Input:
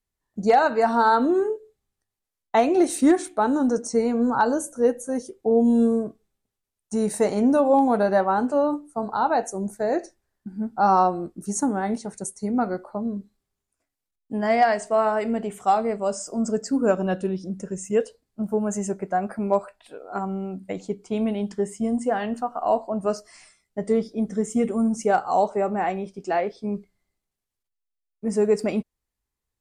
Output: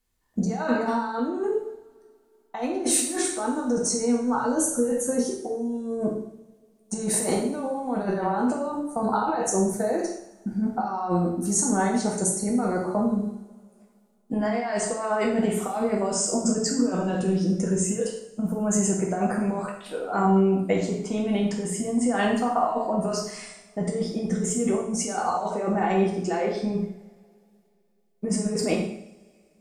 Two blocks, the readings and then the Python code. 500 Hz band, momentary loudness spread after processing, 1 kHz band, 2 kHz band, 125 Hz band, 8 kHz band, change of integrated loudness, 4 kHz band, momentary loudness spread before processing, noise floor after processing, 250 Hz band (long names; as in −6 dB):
−3.5 dB, 8 LU, −5.0 dB, −2.5 dB, +5.0 dB, +9.0 dB, −2.0 dB, +5.0 dB, 13 LU, −63 dBFS, −1.0 dB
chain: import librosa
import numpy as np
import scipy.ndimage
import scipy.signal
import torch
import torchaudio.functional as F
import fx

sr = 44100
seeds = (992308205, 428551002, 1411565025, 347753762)

y = fx.over_compress(x, sr, threshold_db=-28.0, ratio=-1.0)
y = fx.rev_double_slope(y, sr, seeds[0], early_s=0.67, late_s=2.8, knee_db=-26, drr_db=-1.5)